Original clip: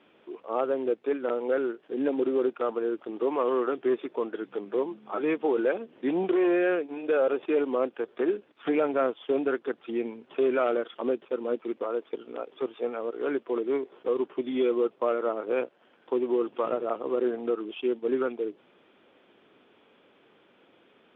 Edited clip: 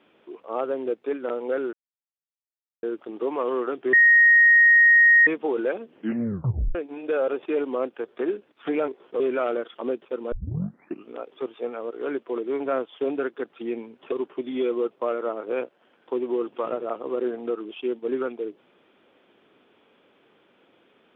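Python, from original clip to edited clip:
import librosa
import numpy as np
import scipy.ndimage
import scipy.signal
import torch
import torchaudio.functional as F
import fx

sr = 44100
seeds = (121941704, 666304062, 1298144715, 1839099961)

y = fx.edit(x, sr, fx.silence(start_s=1.73, length_s=1.1),
    fx.bleep(start_s=3.93, length_s=1.34, hz=1870.0, db=-11.5),
    fx.tape_stop(start_s=5.95, length_s=0.8),
    fx.swap(start_s=8.88, length_s=1.52, other_s=13.8, other_length_s=0.32),
    fx.tape_start(start_s=11.52, length_s=0.78), tone=tone)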